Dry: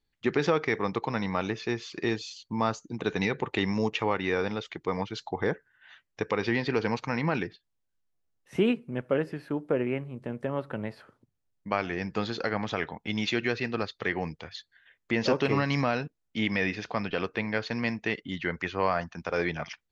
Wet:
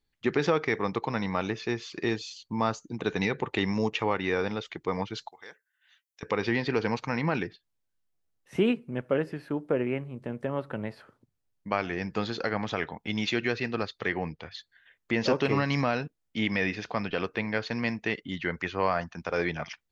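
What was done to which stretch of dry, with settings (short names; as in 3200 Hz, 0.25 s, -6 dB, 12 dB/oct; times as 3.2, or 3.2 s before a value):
5.28–6.23 differentiator
14.17–14.57 LPF 3000 Hz -> 6200 Hz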